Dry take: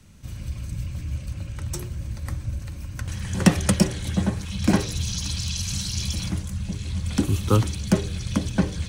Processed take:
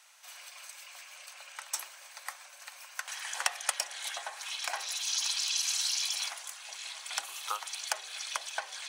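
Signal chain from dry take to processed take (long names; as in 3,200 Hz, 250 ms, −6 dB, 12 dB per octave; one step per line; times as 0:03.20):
downward compressor 6 to 1, threshold −24 dBFS, peak gain reduction 14.5 dB
elliptic high-pass filter 720 Hz, stop band 80 dB
level +2.5 dB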